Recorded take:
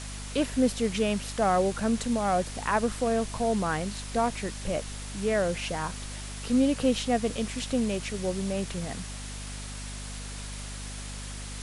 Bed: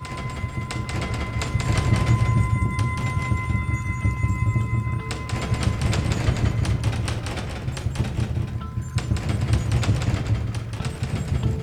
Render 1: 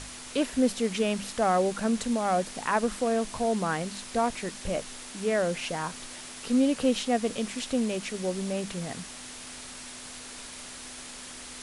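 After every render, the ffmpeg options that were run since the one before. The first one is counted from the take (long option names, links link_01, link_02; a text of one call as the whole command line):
ffmpeg -i in.wav -af "bandreject=frequency=50:width_type=h:width=6,bandreject=frequency=100:width_type=h:width=6,bandreject=frequency=150:width_type=h:width=6,bandreject=frequency=200:width_type=h:width=6" out.wav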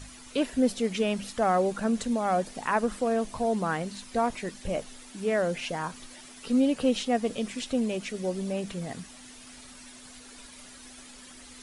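ffmpeg -i in.wav -af "afftdn=noise_reduction=10:noise_floor=-43" out.wav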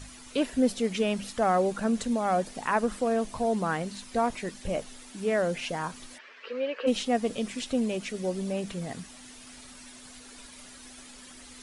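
ffmpeg -i in.wav -filter_complex "[0:a]asplit=3[link_01][link_02][link_03];[link_01]afade=type=out:start_time=6.17:duration=0.02[link_04];[link_02]highpass=frequency=450:width=0.5412,highpass=frequency=450:width=1.3066,equalizer=frequency=480:width_type=q:width=4:gain=6,equalizer=frequency=760:width_type=q:width=4:gain=-10,equalizer=frequency=1100:width_type=q:width=4:gain=3,equalizer=frequency=1700:width_type=q:width=4:gain=8,equalizer=frequency=2400:width_type=q:width=4:gain=4,equalizer=frequency=3600:width_type=q:width=4:gain=-6,lowpass=frequency=3800:width=0.5412,lowpass=frequency=3800:width=1.3066,afade=type=in:start_time=6.17:duration=0.02,afade=type=out:start_time=6.86:duration=0.02[link_05];[link_03]afade=type=in:start_time=6.86:duration=0.02[link_06];[link_04][link_05][link_06]amix=inputs=3:normalize=0" out.wav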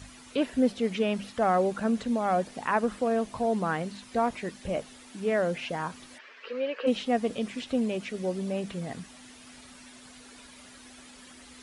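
ffmpeg -i in.wav -filter_complex "[0:a]acrossover=split=4000[link_01][link_02];[link_02]acompressor=threshold=-52dB:ratio=4:attack=1:release=60[link_03];[link_01][link_03]amix=inputs=2:normalize=0,highpass=48" out.wav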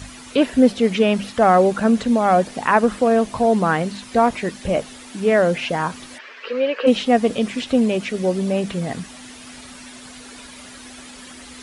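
ffmpeg -i in.wav -af "volume=10.5dB" out.wav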